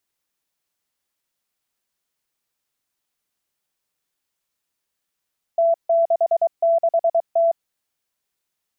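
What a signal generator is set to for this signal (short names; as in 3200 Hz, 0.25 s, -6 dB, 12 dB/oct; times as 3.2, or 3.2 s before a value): Morse "T66T" 23 wpm 669 Hz -13.5 dBFS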